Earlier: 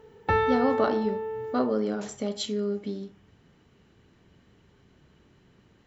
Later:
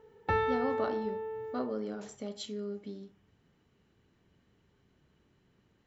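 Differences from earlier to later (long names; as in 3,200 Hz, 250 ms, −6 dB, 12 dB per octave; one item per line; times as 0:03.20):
speech −9.5 dB
background −5.5 dB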